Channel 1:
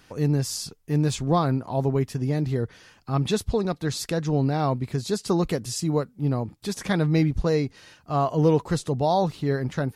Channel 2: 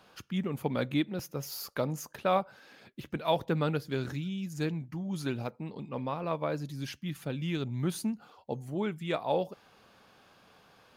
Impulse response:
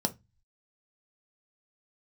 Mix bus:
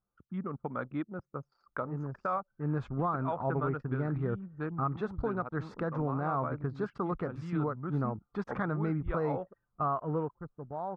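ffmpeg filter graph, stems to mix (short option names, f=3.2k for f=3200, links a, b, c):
-filter_complex "[0:a]adelay=1700,volume=-5.5dB,afade=t=in:st=2.38:d=0.73:silence=0.375837,afade=t=out:st=9.86:d=0.51:silence=0.223872[a];[1:a]volume=-5dB[b];[a][b]amix=inputs=2:normalize=0,anlmdn=0.251,lowpass=f=1.3k:t=q:w=4.6,alimiter=limit=-22dB:level=0:latency=1:release=407"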